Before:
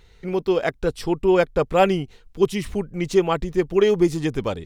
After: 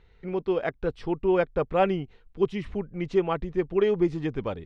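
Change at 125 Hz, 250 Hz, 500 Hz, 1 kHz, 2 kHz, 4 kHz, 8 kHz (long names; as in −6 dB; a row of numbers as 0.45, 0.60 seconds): −5.5 dB, −5.5 dB, −5.5 dB, −5.5 dB, −6.5 dB, −10.5 dB, below −20 dB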